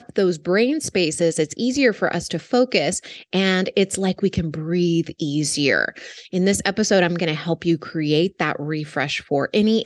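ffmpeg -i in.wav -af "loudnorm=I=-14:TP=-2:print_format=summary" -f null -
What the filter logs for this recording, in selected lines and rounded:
Input Integrated:    -20.8 LUFS
Input True Peak:      -3.6 dBTP
Input LRA:             0.8 LU
Input Threshold:     -30.9 LUFS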